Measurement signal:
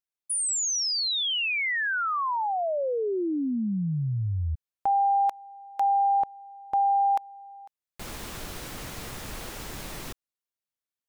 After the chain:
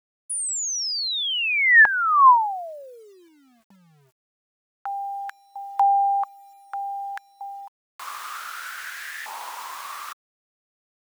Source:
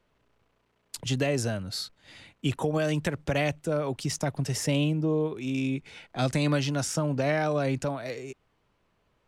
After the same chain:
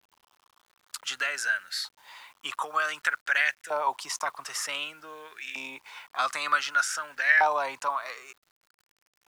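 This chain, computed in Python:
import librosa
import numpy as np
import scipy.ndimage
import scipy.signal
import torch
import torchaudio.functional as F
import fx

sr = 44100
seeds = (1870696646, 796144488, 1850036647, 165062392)

y = fx.filter_lfo_highpass(x, sr, shape='saw_up', hz=0.54, low_hz=870.0, high_hz=1800.0, q=7.5)
y = fx.quant_dither(y, sr, seeds[0], bits=10, dither='none')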